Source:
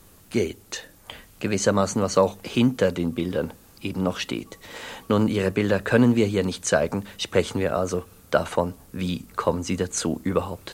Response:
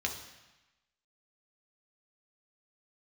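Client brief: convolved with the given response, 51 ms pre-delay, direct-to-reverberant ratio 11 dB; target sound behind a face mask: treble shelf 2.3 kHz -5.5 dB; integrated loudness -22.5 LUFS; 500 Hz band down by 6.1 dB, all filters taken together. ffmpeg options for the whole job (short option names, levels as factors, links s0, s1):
-filter_complex "[0:a]equalizer=f=500:t=o:g=-7,asplit=2[s0][s1];[1:a]atrim=start_sample=2205,adelay=51[s2];[s1][s2]afir=irnorm=-1:irlink=0,volume=0.168[s3];[s0][s3]amix=inputs=2:normalize=0,highshelf=f=2300:g=-5.5,volume=1.68"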